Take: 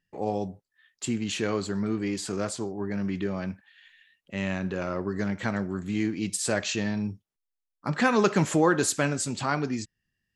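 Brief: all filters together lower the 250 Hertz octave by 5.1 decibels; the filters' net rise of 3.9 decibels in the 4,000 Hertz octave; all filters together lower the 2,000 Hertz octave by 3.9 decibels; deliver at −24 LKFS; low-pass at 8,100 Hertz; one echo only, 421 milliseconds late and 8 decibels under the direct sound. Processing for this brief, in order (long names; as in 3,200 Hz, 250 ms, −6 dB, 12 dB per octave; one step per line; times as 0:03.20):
low-pass filter 8,100 Hz
parametric band 250 Hz −7 dB
parametric band 2,000 Hz −7 dB
parametric band 4,000 Hz +7 dB
single-tap delay 421 ms −8 dB
level +6.5 dB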